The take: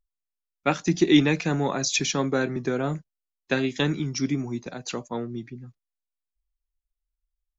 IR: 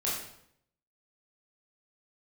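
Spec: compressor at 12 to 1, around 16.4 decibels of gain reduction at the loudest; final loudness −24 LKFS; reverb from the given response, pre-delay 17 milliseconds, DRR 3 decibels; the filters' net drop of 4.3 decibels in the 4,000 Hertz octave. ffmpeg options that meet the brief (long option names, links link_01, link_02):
-filter_complex "[0:a]equalizer=frequency=4000:width_type=o:gain=-5.5,acompressor=threshold=-29dB:ratio=12,asplit=2[link_01][link_02];[1:a]atrim=start_sample=2205,adelay=17[link_03];[link_02][link_03]afir=irnorm=-1:irlink=0,volume=-9.5dB[link_04];[link_01][link_04]amix=inputs=2:normalize=0,volume=9dB"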